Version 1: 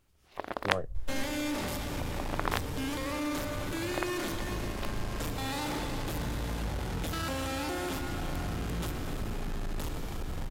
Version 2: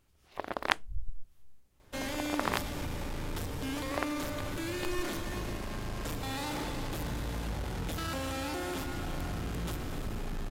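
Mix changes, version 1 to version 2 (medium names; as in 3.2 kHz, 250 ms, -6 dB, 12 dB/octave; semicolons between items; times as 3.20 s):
speech: muted; second sound: entry +0.85 s; reverb: off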